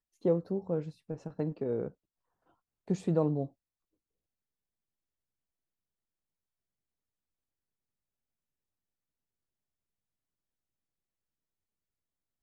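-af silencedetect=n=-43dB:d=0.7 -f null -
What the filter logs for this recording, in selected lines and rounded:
silence_start: 1.88
silence_end: 2.88 | silence_duration: 0.99
silence_start: 3.47
silence_end: 12.43 | silence_duration: 8.96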